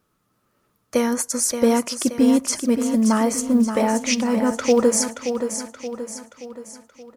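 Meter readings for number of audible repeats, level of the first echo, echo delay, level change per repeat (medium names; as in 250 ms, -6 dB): 5, -8.0 dB, 576 ms, -6.0 dB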